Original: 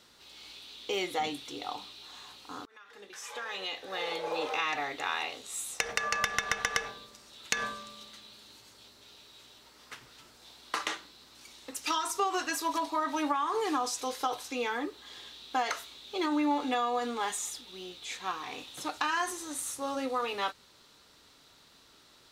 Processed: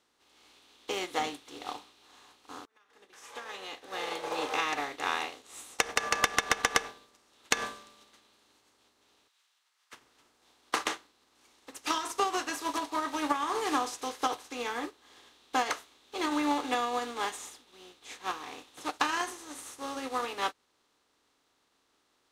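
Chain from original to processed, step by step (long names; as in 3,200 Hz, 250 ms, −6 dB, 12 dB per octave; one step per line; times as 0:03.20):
compressor on every frequency bin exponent 0.6
0:09.28–0:09.93: high-pass filter 1,300 Hz 12 dB per octave
expander for the loud parts 2.5 to 1, over −45 dBFS
level +1.5 dB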